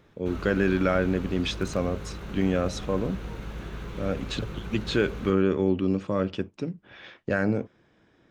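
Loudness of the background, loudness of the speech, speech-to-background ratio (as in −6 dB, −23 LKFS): −38.5 LKFS, −27.5 LKFS, 11.0 dB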